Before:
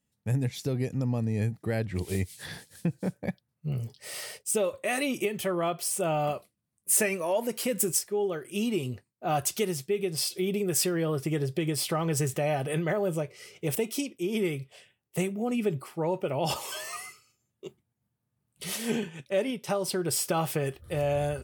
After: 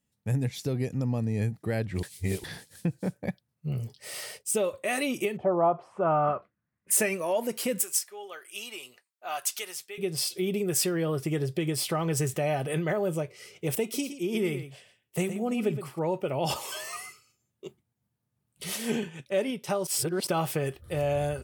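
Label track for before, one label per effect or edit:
2.030000	2.440000	reverse
5.360000	6.900000	low-pass with resonance 720 Hz → 2,000 Hz, resonance Q 3.6
7.820000	9.980000	high-pass filter 1,000 Hz
13.820000	15.990000	single-tap delay 117 ms −11 dB
19.870000	20.270000	reverse

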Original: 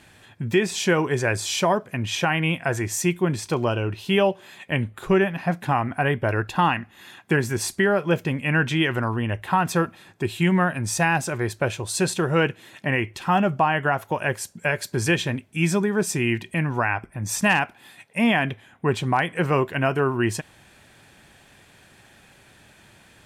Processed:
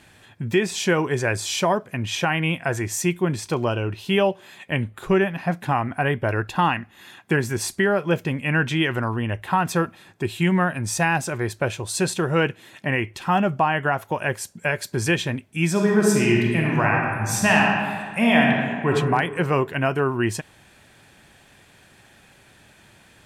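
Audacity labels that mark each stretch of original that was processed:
15.710000	18.910000	thrown reverb, RT60 1.8 s, DRR −1.5 dB

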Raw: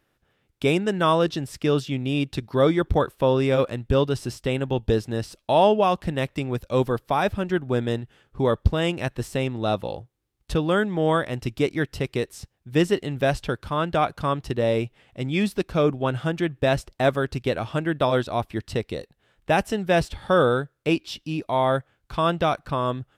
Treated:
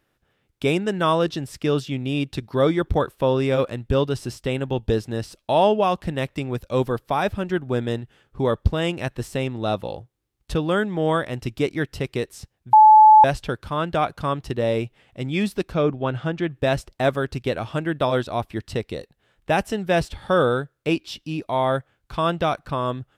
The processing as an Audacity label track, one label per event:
12.730000	13.240000	beep over 863 Hz −6.5 dBFS
15.740000	16.500000	high-frequency loss of the air 90 metres

